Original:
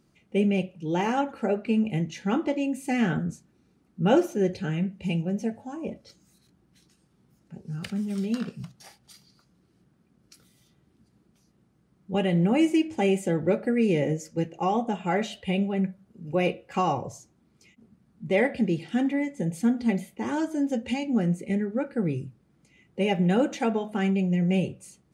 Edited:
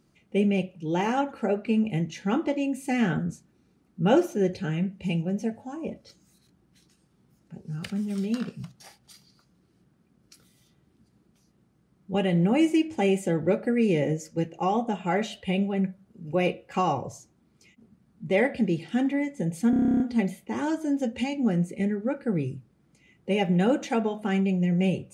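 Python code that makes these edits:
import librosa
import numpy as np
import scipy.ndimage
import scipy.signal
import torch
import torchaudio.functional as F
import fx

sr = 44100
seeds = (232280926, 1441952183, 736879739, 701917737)

y = fx.edit(x, sr, fx.stutter(start_s=19.7, slice_s=0.03, count=11), tone=tone)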